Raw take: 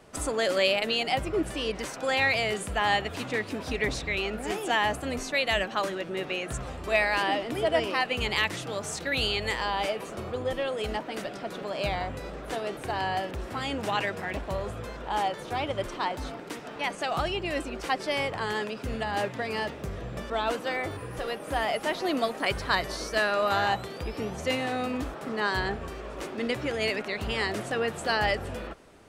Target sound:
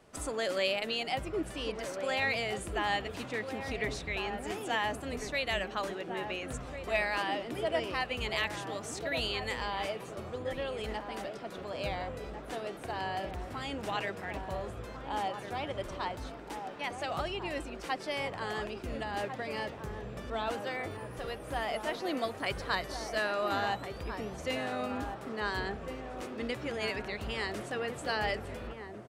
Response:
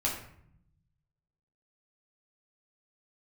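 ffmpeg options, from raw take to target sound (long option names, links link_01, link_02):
-filter_complex "[0:a]asplit=2[link_01][link_02];[link_02]adelay=1399,volume=-6dB,highshelf=frequency=4000:gain=-31.5[link_03];[link_01][link_03]amix=inputs=2:normalize=0,volume=-6.5dB"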